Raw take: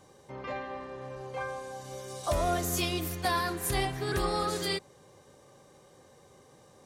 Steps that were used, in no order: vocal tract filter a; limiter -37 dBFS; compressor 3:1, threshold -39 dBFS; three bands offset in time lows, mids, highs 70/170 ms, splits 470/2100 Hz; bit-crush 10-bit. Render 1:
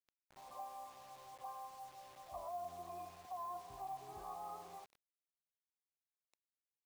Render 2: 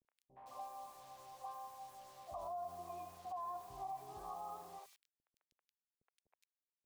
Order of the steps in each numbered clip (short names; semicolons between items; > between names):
vocal tract filter > compressor > limiter > three bands offset in time > bit-crush; vocal tract filter > bit-crush > three bands offset in time > limiter > compressor